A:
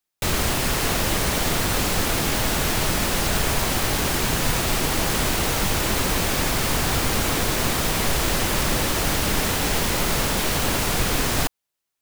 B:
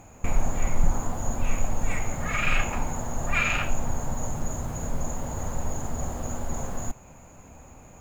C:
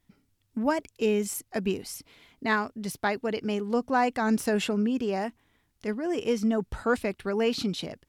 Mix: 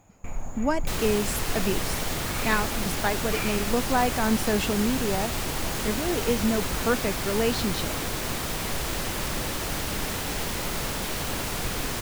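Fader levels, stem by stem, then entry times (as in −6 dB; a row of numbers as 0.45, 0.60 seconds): −7.5, −9.5, +0.5 decibels; 0.65, 0.00, 0.00 seconds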